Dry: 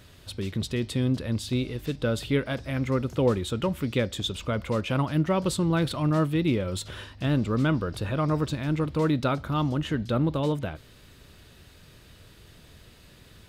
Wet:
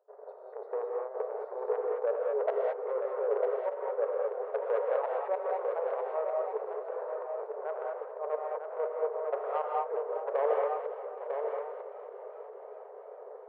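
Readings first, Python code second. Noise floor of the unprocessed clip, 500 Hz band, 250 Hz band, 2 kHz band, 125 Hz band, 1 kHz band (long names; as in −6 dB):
−53 dBFS, +0.5 dB, below −25 dB, −12.0 dB, below −40 dB, −0.5 dB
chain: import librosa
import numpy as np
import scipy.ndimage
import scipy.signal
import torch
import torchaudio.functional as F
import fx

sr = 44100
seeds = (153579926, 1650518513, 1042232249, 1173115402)

p1 = scipy.signal.sosfilt(scipy.signal.cheby2(4, 60, 2800.0, 'lowpass', fs=sr, output='sos'), x)
p2 = fx.level_steps(p1, sr, step_db=18)
p3 = p1 + F.gain(torch.from_numpy(p2), -1.0).numpy()
p4 = fx.transient(p3, sr, attack_db=2, sustain_db=-2)
p5 = fx.over_compress(p4, sr, threshold_db=-27.0, ratio=-1.0)
p6 = fx.gate_flip(p5, sr, shuts_db=-18.0, range_db=-27)
p7 = fx.step_gate(p6, sr, bpm=185, pattern='.xxx.xxxxxx', floor_db=-24.0, edge_ms=4.5)
p8 = 10.0 ** (-25.5 / 20.0) * np.tanh(p7 / 10.0 ** (-25.5 / 20.0))
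p9 = fx.brickwall_highpass(p8, sr, low_hz=400.0)
p10 = p9 + 10.0 ** (-6.0 / 20.0) * np.pad(p9, (int(949 * sr / 1000.0), 0))[:len(p9)]
p11 = fx.rev_gated(p10, sr, seeds[0], gate_ms=240, shape='rising', drr_db=-0.5)
p12 = fx.echo_warbled(p11, sr, ms=410, feedback_pct=72, rate_hz=2.8, cents=56, wet_db=-14.5)
y = F.gain(torch.from_numpy(p12), 6.0).numpy()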